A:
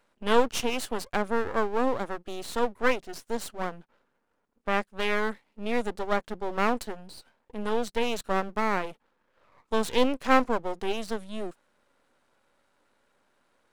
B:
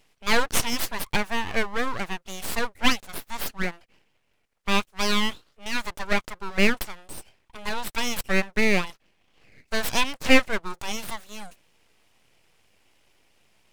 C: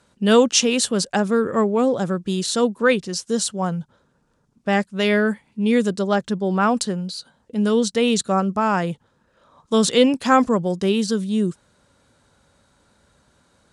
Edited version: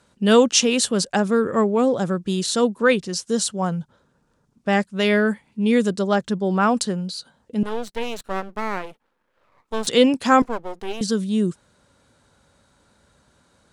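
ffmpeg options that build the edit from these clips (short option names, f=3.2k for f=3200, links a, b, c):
-filter_complex "[0:a]asplit=2[a][b];[2:a]asplit=3[c][d][e];[c]atrim=end=7.632[f];[a]atrim=start=7.628:end=9.872[g];[d]atrim=start=9.868:end=10.422[h];[b]atrim=start=10.418:end=11.012[i];[e]atrim=start=11.008[j];[f][g]acrossfade=d=0.004:c1=hsin:c2=hsin[k];[k][h]acrossfade=d=0.004:c1=hsin:c2=hsin[l];[l][i]acrossfade=d=0.004:c1=hsin:c2=hsin[m];[m][j]acrossfade=d=0.004:c1=hsin:c2=hsin"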